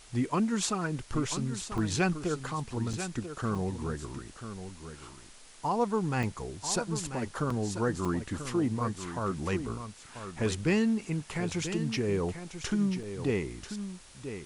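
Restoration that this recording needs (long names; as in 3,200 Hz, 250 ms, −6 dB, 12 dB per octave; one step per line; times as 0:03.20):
repair the gap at 0:01.78/0:02.93/0:03.55/0:06.23/0:07.50/0:08.05/0:13.03, 4 ms
broadband denoise 27 dB, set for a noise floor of −49 dBFS
echo removal 989 ms −10 dB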